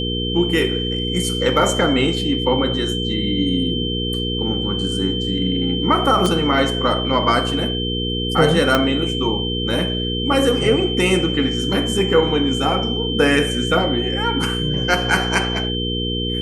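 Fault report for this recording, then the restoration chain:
hum 60 Hz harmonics 8 -24 dBFS
whine 3.1 kHz -24 dBFS
6.26 s: pop
8.75 s: pop -2 dBFS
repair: de-click; de-hum 60 Hz, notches 8; band-stop 3.1 kHz, Q 30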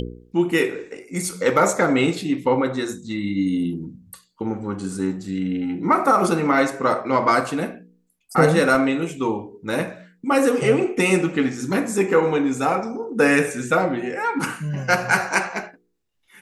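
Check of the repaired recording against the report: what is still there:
8.75 s: pop

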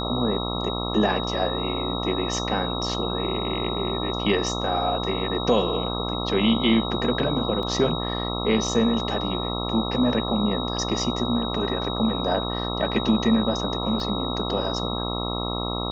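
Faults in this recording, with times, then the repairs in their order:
buzz 60 Hz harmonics 22 -29 dBFS
whine 3.8 kHz -31 dBFS
7.63 s: dropout 2 ms
14.00 s: dropout 2 ms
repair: band-stop 3.8 kHz, Q 30; de-hum 60 Hz, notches 22; interpolate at 7.63 s, 2 ms; interpolate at 14.00 s, 2 ms

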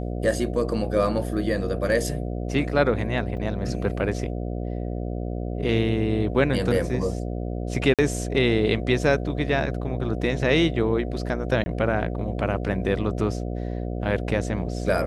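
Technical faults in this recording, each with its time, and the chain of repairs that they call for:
buzz 60 Hz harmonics 12 -29 dBFS
3.37 s: dropout 4.4 ms
7.94–7.99 s: dropout 47 ms
11.64–11.66 s: dropout 20 ms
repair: de-hum 60 Hz, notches 12; interpolate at 3.37 s, 4.4 ms; interpolate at 7.94 s, 47 ms; interpolate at 11.64 s, 20 ms

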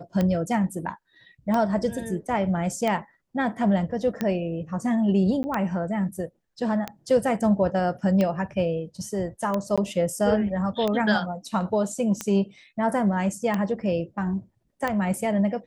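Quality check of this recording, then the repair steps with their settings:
tick 45 rpm -13 dBFS
5.43–5.44 s: dropout 10 ms
9.76–9.78 s: dropout 16 ms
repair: de-click; interpolate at 5.43 s, 10 ms; interpolate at 9.76 s, 16 ms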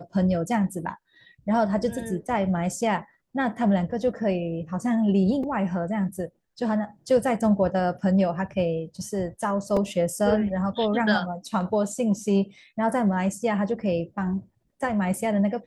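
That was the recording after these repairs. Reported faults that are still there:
nothing left

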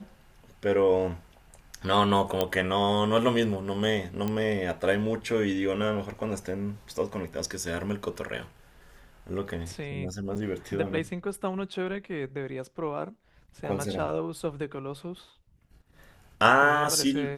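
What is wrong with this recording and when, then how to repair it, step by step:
2.41 s: pop -11 dBFS
4.28 s: pop -17 dBFS
10.35–10.36 s: dropout 5.4 ms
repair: de-click; interpolate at 10.35 s, 5.4 ms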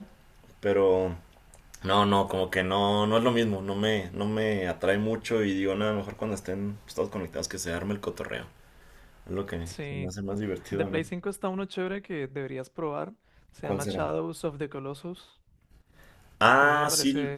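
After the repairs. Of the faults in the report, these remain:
nothing left

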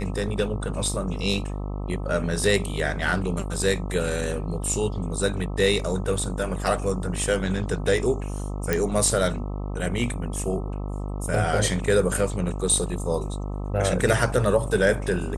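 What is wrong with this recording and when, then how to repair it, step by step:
buzz 50 Hz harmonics 26 -30 dBFS
8.73 s: pop -8 dBFS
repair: de-click; de-hum 50 Hz, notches 26

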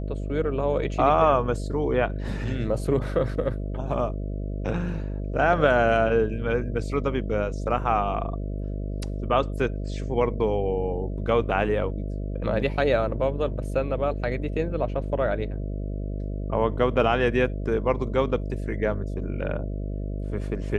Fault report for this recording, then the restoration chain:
buzz 50 Hz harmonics 13 -30 dBFS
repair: de-hum 50 Hz, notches 13

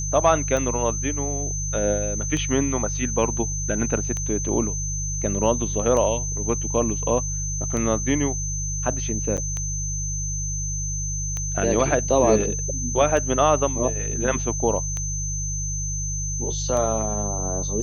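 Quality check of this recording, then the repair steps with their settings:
hum 50 Hz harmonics 3 -29 dBFS
tick 33 1/3 rpm -15 dBFS
whine 6.2 kHz -28 dBFS
9.37–9.38 s: dropout 7.9 ms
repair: de-click; de-hum 50 Hz, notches 3; band-stop 6.2 kHz, Q 30; interpolate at 9.37 s, 7.9 ms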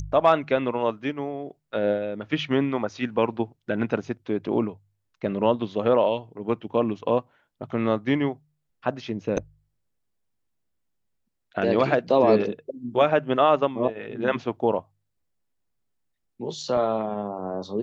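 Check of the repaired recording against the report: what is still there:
nothing left

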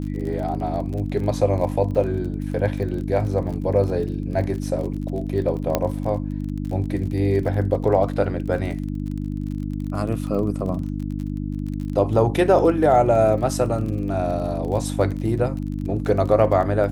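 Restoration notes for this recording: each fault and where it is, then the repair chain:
crackle 32 per s -30 dBFS
hum 50 Hz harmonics 6 -27 dBFS
5.75 s: pop -6 dBFS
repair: de-click; de-hum 50 Hz, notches 6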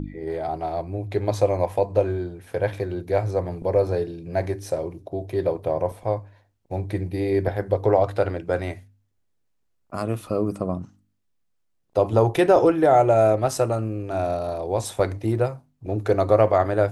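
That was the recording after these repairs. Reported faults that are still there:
nothing left

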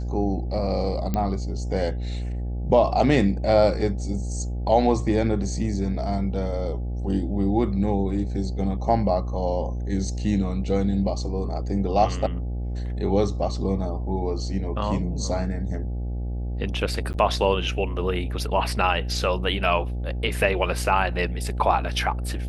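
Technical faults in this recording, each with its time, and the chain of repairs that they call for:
buzz 60 Hz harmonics 14 -28 dBFS
1.14 s: pop -12 dBFS
17.13–17.14 s: dropout 9.7 ms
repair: de-click; de-hum 60 Hz, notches 14; interpolate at 17.13 s, 9.7 ms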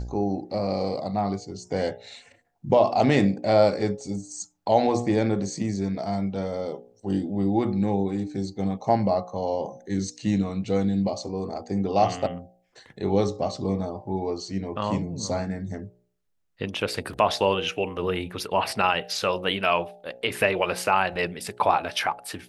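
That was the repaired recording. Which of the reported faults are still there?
nothing left

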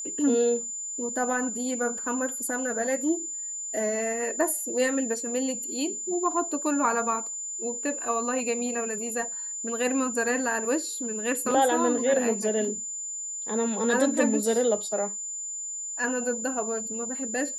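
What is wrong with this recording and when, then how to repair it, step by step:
whine 7.1 kHz -32 dBFS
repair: band-stop 7.1 kHz, Q 30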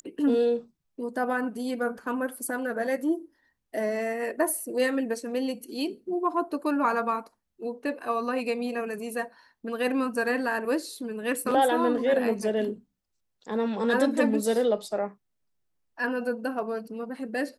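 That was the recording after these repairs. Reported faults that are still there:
nothing left

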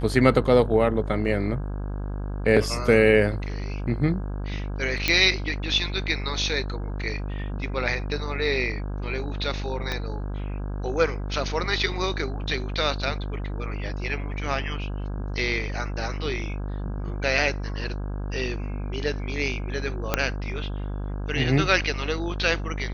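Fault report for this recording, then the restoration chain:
buzz 50 Hz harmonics 33 -30 dBFS
5.08 s: pop -6 dBFS
9.92 s: pop -14 dBFS
20.14 s: pop -5 dBFS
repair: de-click; de-hum 50 Hz, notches 33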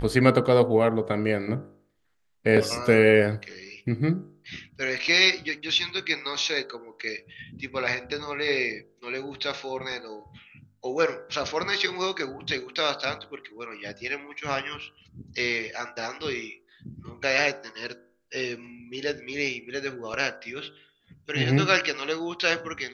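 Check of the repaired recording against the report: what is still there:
9.92 s: pop
20.14 s: pop

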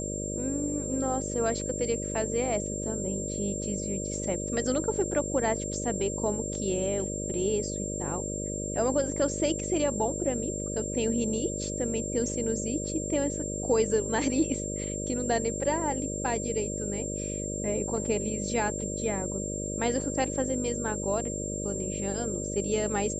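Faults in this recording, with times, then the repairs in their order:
buzz 50 Hz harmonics 12 -35 dBFS
whine 7.4 kHz -35 dBFS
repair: band-stop 7.4 kHz, Q 30; de-hum 50 Hz, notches 12

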